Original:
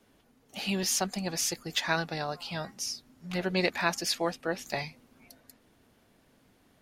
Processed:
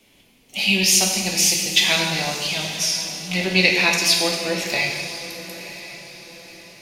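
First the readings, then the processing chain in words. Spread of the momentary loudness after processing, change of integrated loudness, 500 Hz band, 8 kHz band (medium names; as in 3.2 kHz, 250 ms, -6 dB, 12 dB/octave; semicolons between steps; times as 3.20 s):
18 LU, +13.0 dB, +7.0 dB, +14.0 dB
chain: resonant high shelf 1.9 kHz +6.5 dB, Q 3; on a send: echo that smears into a reverb 972 ms, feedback 40%, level -13.5 dB; on the sum: plate-style reverb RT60 1.6 s, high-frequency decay 0.9×, DRR 0 dB; trim +4 dB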